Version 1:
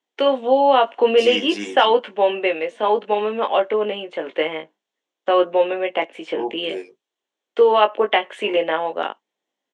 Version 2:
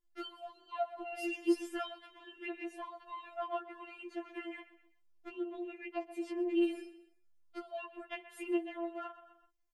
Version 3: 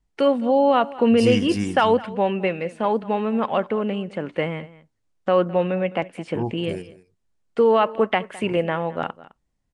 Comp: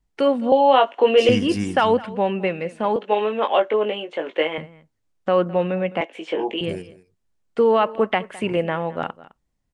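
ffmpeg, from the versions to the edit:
-filter_complex "[0:a]asplit=3[a][b][c];[2:a]asplit=4[d][e][f][g];[d]atrim=end=0.522[h];[a]atrim=start=0.518:end=1.292[i];[e]atrim=start=1.288:end=2.962[j];[b]atrim=start=2.958:end=4.582[k];[f]atrim=start=4.578:end=6.012[l];[c]atrim=start=6.008:end=6.612[m];[g]atrim=start=6.608[n];[h][i]acrossfade=d=0.004:c1=hsin:c2=hsin[o];[o][j]acrossfade=d=0.004:c1=hsin:c2=hsin[p];[p][k]acrossfade=d=0.004:c1=hsin:c2=hsin[q];[q][l]acrossfade=d=0.004:c1=hsin:c2=hsin[r];[r][m]acrossfade=d=0.004:c1=hsin:c2=hsin[s];[s][n]acrossfade=d=0.004:c1=hsin:c2=hsin"

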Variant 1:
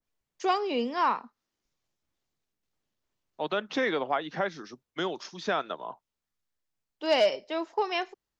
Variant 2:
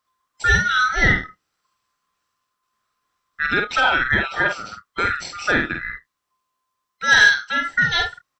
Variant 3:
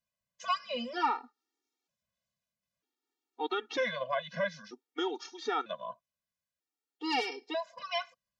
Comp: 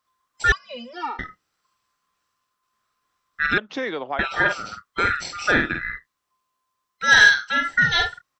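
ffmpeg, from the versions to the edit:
-filter_complex "[1:a]asplit=3[a][b][c];[a]atrim=end=0.522[d];[2:a]atrim=start=0.518:end=1.192[e];[b]atrim=start=1.188:end=3.582[f];[0:a]atrim=start=3.578:end=4.192[g];[c]atrim=start=4.188[h];[d][e]acrossfade=d=0.004:c1=hsin:c2=hsin[i];[i][f]acrossfade=d=0.004:c1=hsin:c2=hsin[j];[j][g]acrossfade=d=0.004:c1=hsin:c2=hsin[k];[k][h]acrossfade=d=0.004:c1=hsin:c2=hsin"

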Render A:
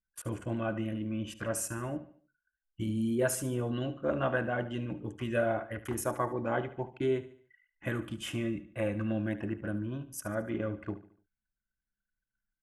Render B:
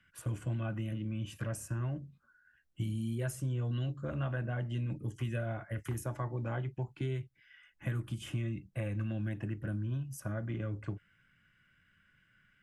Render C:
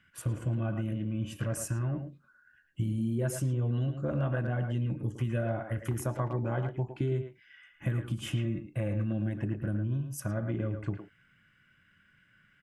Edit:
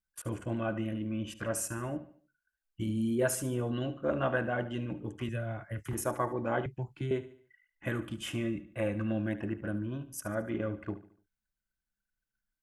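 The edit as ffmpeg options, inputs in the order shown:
-filter_complex "[1:a]asplit=2[a][b];[0:a]asplit=3[c][d][e];[c]atrim=end=5.292[f];[a]atrim=start=5.288:end=5.932[g];[d]atrim=start=5.928:end=6.662[h];[b]atrim=start=6.658:end=7.112[i];[e]atrim=start=7.108[j];[f][g]acrossfade=d=0.004:c1=hsin:c2=hsin[k];[k][h]acrossfade=d=0.004:c1=hsin:c2=hsin[l];[l][i]acrossfade=d=0.004:c1=hsin:c2=hsin[m];[m][j]acrossfade=d=0.004:c1=hsin:c2=hsin"

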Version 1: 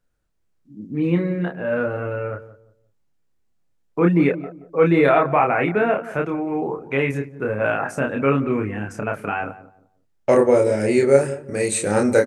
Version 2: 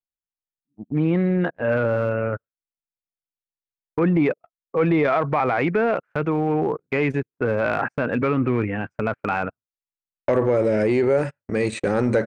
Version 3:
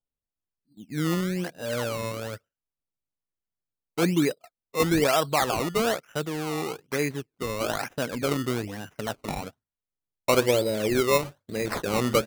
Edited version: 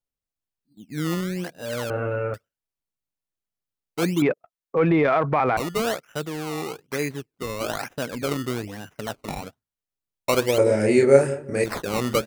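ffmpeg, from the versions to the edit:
-filter_complex "[0:a]asplit=2[a][b];[2:a]asplit=4[c][d][e][f];[c]atrim=end=1.902[g];[a]atrim=start=1.898:end=2.342[h];[d]atrim=start=2.338:end=4.222[i];[1:a]atrim=start=4.218:end=5.572[j];[e]atrim=start=5.568:end=10.582[k];[b]atrim=start=10.578:end=11.642[l];[f]atrim=start=11.638[m];[g][h]acrossfade=d=0.004:c1=hsin:c2=hsin[n];[n][i]acrossfade=d=0.004:c1=hsin:c2=hsin[o];[o][j]acrossfade=d=0.004:c1=hsin:c2=hsin[p];[p][k]acrossfade=d=0.004:c1=hsin:c2=hsin[q];[q][l]acrossfade=d=0.004:c1=hsin:c2=hsin[r];[r][m]acrossfade=d=0.004:c1=hsin:c2=hsin"

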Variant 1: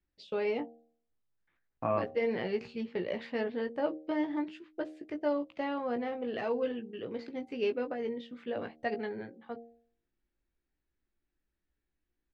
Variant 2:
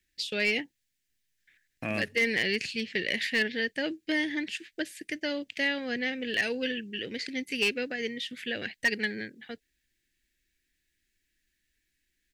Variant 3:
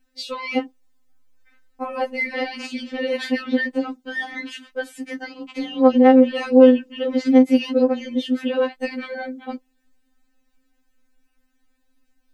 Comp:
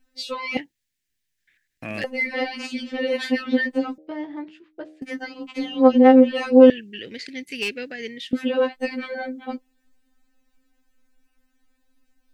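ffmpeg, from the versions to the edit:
-filter_complex "[1:a]asplit=2[a][b];[2:a]asplit=4[c][d][e][f];[c]atrim=end=0.572[g];[a]atrim=start=0.568:end=2.042[h];[d]atrim=start=2.038:end=3.982[i];[0:a]atrim=start=3.978:end=5.022[j];[e]atrim=start=5.018:end=6.702[k];[b]atrim=start=6.698:end=8.332[l];[f]atrim=start=8.328[m];[g][h]acrossfade=d=0.004:c1=hsin:c2=hsin[n];[n][i]acrossfade=d=0.004:c1=hsin:c2=hsin[o];[o][j]acrossfade=d=0.004:c1=hsin:c2=hsin[p];[p][k]acrossfade=d=0.004:c1=hsin:c2=hsin[q];[q][l]acrossfade=d=0.004:c1=hsin:c2=hsin[r];[r][m]acrossfade=d=0.004:c1=hsin:c2=hsin"

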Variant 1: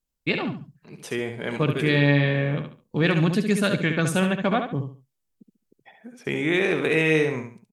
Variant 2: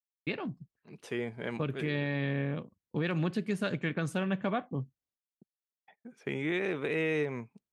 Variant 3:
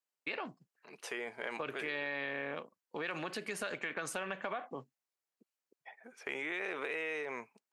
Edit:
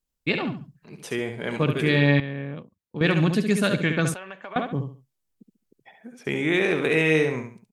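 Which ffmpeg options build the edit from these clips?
-filter_complex "[0:a]asplit=3[a][b][c];[a]atrim=end=2.202[d];[1:a]atrim=start=2.198:end=3.012[e];[b]atrim=start=3.008:end=4.142[f];[2:a]atrim=start=4.138:end=4.562[g];[c]atrim=start=4.558[h];[d][e]acrossfade=d=0.004:c1=hsin:c2=hsin[i];[i][f]acrossfade=d=0.004:c1=hsin:c2=hsin[j];[j][g]acrossfade=d=0.004:c1=hsin:c2=hsin[k];[k][h]acrossfade=d=0.004:c1=hsin:c2=hsin"

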